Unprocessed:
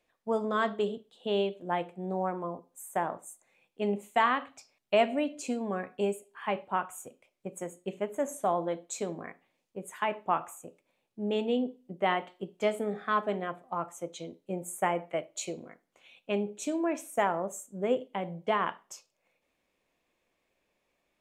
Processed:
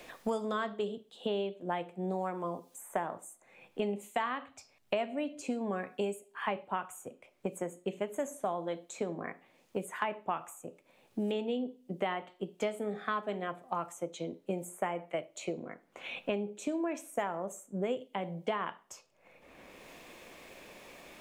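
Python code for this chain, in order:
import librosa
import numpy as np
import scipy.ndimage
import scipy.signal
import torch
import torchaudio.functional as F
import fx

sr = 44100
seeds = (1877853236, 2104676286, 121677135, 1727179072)

y = fx.band_squash(x, sr, depth_pct=100)
y = F.gain(torch.from_numpy(y), -4.5).numpy()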